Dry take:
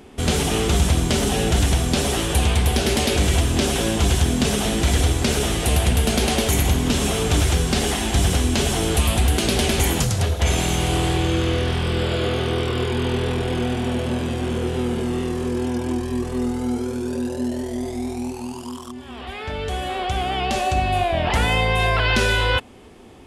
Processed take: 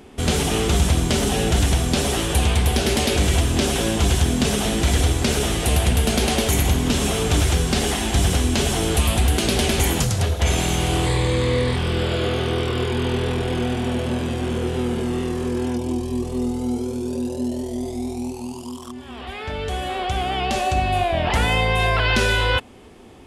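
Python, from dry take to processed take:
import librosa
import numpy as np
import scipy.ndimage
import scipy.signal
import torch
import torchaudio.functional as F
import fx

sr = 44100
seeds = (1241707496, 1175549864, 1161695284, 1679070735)

y = fx.ripple_eq(x, sr, per_octave=0.98, db=10, at=(11.06, 11.76))
y = fx.peak_eq(y, sr, hz=1600.0, db=-12.0, octaves=0.85, at=(15.76, 18.82))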